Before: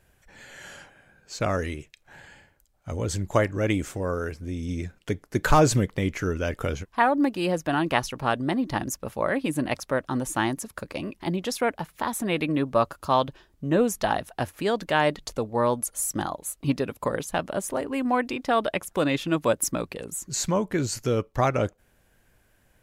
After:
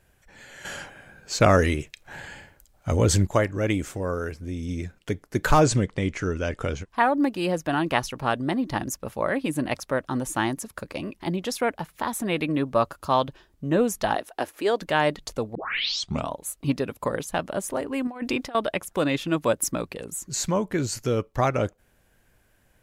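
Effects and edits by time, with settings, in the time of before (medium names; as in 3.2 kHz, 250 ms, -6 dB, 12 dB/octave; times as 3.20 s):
0.65–3.27 s: gain +8.5 dB
5.64–6.90 s: steep low-pass 9.6 kHz
14.15–14.81 s: resonant low shelf 220 Hz -13.5 dB, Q 1.5
15.55 s: tape start 0.84 s
18.07–18.55 s: compressor with a negative ratio -29 dBFS, ratio -0.5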